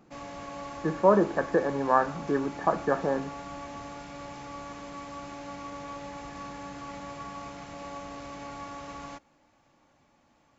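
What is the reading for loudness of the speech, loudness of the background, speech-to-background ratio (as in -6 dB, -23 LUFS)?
-26.5 LUFS, -41.0 LUFS, 14.5 dB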